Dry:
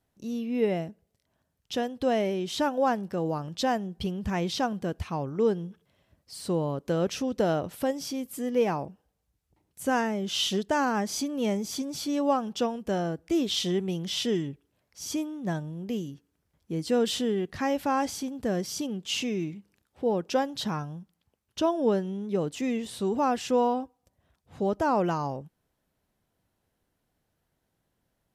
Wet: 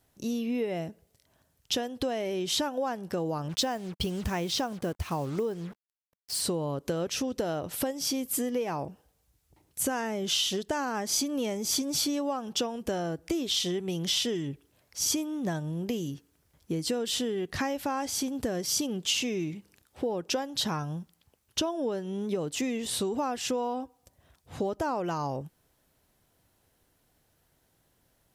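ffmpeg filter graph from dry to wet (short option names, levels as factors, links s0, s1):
-filter_complex "[0:a]asettb=1/sr,asplit=3[s0][s1][s2];[s0]atrim=end=3.484[s3];[s1]atrim=start=3.48:end=6.41,asetpts=PTS-STARTPTS,afade=t=in:d=0.004:c=qsin,afade=t=out:st=2.926:d=0.004:c=qsin,acrusher=bits=7:mix=0:aa=0.5,adynamicequalizer=threshold=0.00562:dfrequency=1900:dqfactor=0.7:tfrequency=1900:tqfactor=0.7:attack=5:release=100:ratio=0.375:range=2:mode=cutabove:tftype=highshelf[s4];[s2]atrim=start=6.406[s5];[s3][s4]acrossfade=d=0.004:c1=hsin:c2=qsin[s6];[s6][s5]acrossfade=d=0.004:c1=qsin:c2=hsin,equalizer=f=200:t=o:w=0.35:g=-5,acompressor=threshold=0.02:ratio=10,highshelf=f=4000:g=6,volume=2.11"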